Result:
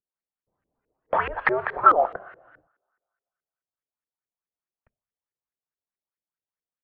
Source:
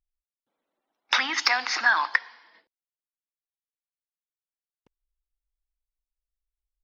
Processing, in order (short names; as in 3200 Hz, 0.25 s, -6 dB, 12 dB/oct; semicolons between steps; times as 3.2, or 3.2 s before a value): mistuned SSB -350 Hz 150–3500 Hz; two-slope reverb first 0.47 s, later 1.8 s, from -22 dB, DRR 19 dB; LFO low-pass saw up 4.7 Hz 380–2000 Hz